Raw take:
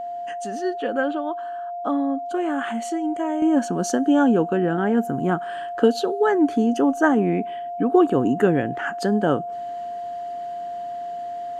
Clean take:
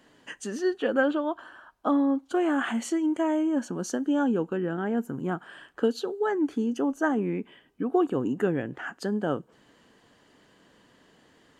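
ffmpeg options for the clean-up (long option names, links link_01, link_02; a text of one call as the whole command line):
ffmpeg -i in.wav -af "bandreject=frequency=700:width=30,asetnsamples=nb_out_samples=441:pad=0,asendcmd='3.42 volume volume -7.5dB',volume=0dB" out.wav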